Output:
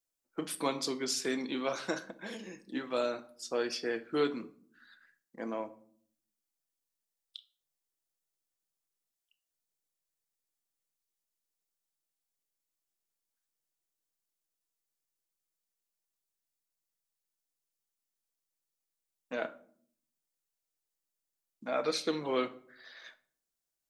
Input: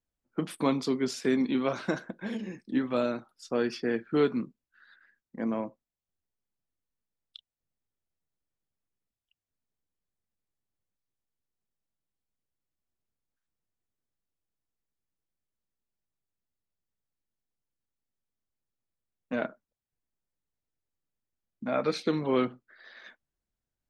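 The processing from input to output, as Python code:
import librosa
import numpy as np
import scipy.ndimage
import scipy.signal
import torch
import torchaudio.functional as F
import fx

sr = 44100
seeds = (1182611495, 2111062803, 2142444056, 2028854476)

y = fx.bass_treble(x, sr, bass_db=-13, treble_db=10)
y = fx.room_shoebox(y, sr, seeds[0], volume_m3=700.0, walls='furnished', distance_m=0.67)
y = F.gain(torch.from_numpy(y), -3.0).numpy()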